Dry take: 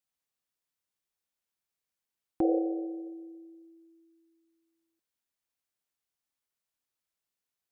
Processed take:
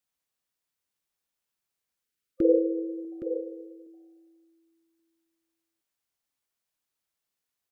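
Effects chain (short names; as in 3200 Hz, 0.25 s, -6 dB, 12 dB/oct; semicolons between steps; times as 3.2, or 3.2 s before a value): 2.04–3.12 spectral delete 520–1200 Hz; 2.41–3.05 band shelf 690 Hz +11 dB 1.2 oct; echo 0.817 s -9.5 dB; gain +2.5 dB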